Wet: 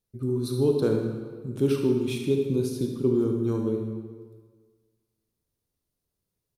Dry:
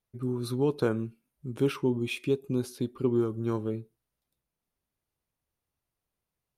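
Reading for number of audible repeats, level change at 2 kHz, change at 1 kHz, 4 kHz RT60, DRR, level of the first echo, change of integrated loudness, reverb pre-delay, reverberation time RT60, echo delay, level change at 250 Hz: 1, −3.5 dB, −3.0 dB, 1.2 s, 1.5 dB, −10.0 dB, +4.0 dB, 30 ms, 1.6 s, 73 ms, +4.0 dB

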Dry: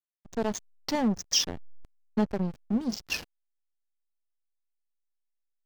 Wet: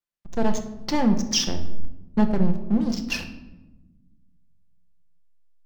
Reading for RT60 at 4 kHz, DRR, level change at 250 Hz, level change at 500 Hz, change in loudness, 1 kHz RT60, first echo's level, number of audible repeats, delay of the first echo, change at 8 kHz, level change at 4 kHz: 0.60 s, 4.5 dB, +7.0 dB, +4.0 dB, +5.0 dB, 0.90 s, no echo audible, no echo audible, no echo audible, +1.5 dB, +2.5 dB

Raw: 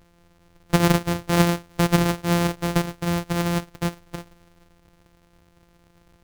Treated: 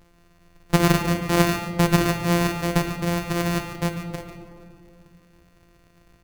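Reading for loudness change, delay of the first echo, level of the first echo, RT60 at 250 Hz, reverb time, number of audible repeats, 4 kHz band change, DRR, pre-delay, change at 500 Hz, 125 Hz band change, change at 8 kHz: 0.0 dB, 144 ms, −11.5 dB, 2.9 s, 2.4 s, 1, +0.5 dB, 5.0 dB, 3 ms, +0.5 dB, 0.0 dB, +0.5 dB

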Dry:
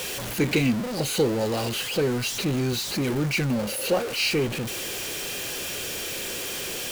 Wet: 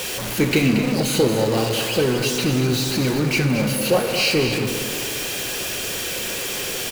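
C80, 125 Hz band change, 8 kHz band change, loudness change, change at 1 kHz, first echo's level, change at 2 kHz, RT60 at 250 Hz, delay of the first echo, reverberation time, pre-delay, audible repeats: 5.5 dB, +6.0 dB, +5.0 dB, +5.5 dB, +5.5 dB, −9.0 dB, +5.5 dB, 2.4 s, 229 ms, 2.4 s, 5 ms, 1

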